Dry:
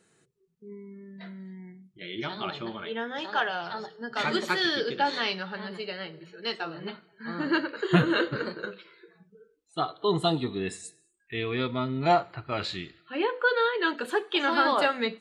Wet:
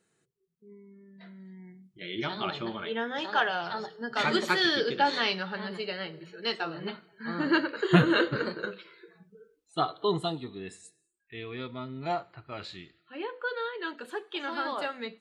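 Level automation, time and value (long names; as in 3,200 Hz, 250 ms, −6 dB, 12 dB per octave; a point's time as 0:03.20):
0:01.12 −8 dB
0:02.16 +1 dB
0:09.98 +1 dB
0:10.38 −9 dB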